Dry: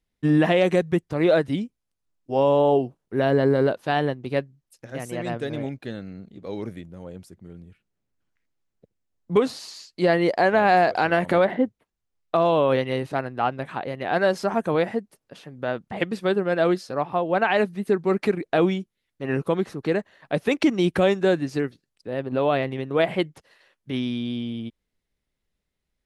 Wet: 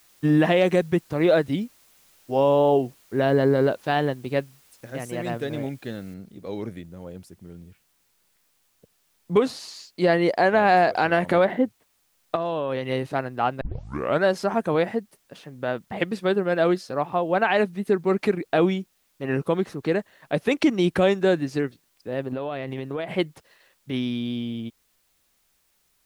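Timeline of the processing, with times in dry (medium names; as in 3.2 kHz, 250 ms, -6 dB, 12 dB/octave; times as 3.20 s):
6.14 s: noise floor step -58 dB -68 dB
12.35–12.89 s: compression, threshold -22 dBFS
13.61 s: tape start 0.63 s
22.33–23.16 s: compression 10:1, threshold -25 dBFS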